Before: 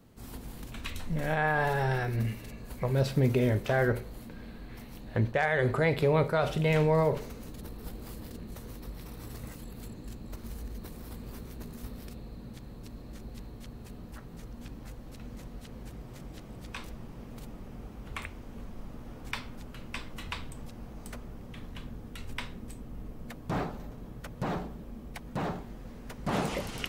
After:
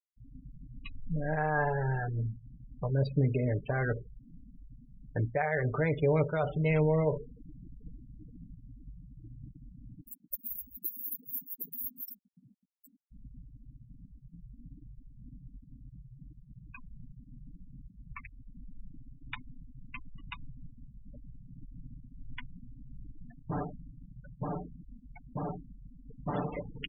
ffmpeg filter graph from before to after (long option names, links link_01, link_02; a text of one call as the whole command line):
ffmpeg -i in.wav -filter_complex "[0:a]asettb=1/sr,asplit=3[link_01][link_02][link_03];[link_01]atrim=end=10.014[link_04];[link_02]atrim=start=10.01:end=13.12,asetpts=PTS-STARTPTS,afade=type=in:duration=0.004:curve=qsin,afade=type=out:start_time=3.106:duration=0.004:curve=qsin,aemphasis=mode=production:type=riaa,acontrast=29[link_05];[link_03]atrim=start=13.116[link_06];[link_04][link_05]acrossfade=duration=0.004:curve1=hsin:curve2=qsin[link_07];[link_07][link_06]acrossfade=duration=0.004:curve1=qsin:curve2=hsin,afftfilt=real='re*gte(hypot(re,im),0.0355)':imag='im*gte(hypot(re,im),0.0355)':win_size=1024:overlap=0.75,aecho=1:1:6.8:0.6,volume=-4.5dB" out.wav